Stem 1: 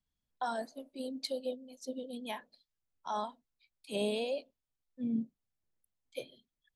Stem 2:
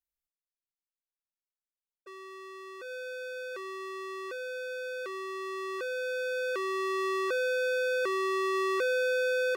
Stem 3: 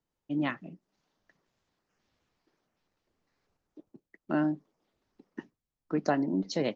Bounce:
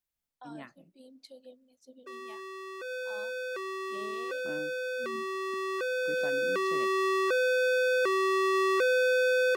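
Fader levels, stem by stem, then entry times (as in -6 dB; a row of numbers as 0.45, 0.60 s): -14.0, +3.0, -15.0 dB; 0.00, 0.00, 0.15 s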